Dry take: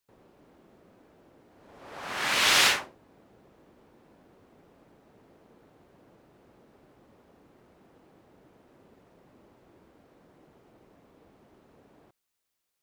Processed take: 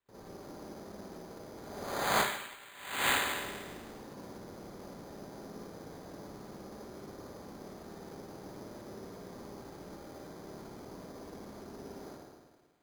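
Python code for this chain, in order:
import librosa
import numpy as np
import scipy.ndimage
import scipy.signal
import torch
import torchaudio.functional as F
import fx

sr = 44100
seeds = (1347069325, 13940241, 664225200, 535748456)

y = fx.air_absorb(x, sr, metres=79.0)
y = fx.rev_spring(y, sr, rt60_s=1.5, pass_ms=(53, 58), chirp_ms=50, drr_db=-9.5)
y = fx.over_compress(y, sr, threshold_db=-27.0, ratio=-0.5)
y = np.repeat(scipy.signal.resample_poly(y, 1, 8), 8)[:len(y)]
y = y * librosa.db_to_amplitude(-5.0)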